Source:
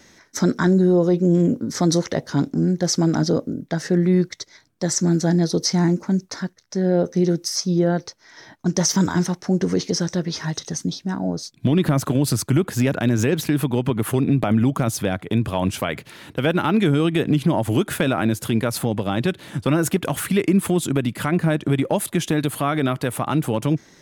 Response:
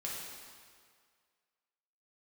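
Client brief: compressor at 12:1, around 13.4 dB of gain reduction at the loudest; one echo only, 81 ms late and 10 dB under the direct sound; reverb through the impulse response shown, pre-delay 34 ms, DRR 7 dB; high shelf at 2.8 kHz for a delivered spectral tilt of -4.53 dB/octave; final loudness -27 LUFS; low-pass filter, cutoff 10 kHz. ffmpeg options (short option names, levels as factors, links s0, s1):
-filter_complex "[0:a]lowpass=10000,highshelf=f=2800:g=6.5,acompressor=threshold=0.0501:ratio=12,aecho=1:1:81:0.316,asplit=2[s0][s1];[1:a]atrim=start_sample=2205,adelay=34[s2];[s1][s2]afir=irnorm=-1:irlink=0,volume=0.376[s3];[s0][s3]amix=inputs=2:normalize=0,volume=1.33"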